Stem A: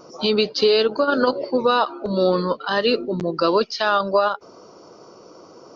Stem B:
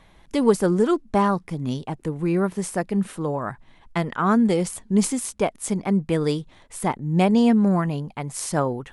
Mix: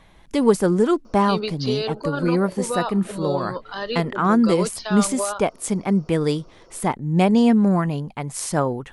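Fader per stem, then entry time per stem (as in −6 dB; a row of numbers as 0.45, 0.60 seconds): −8.5, +1.5 decibels; 1.05, 0.00 seconds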